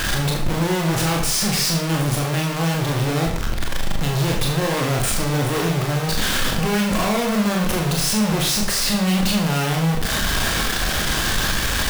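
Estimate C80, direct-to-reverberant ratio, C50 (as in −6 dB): 8.5 dB, 0.0 dB, 5.0 dB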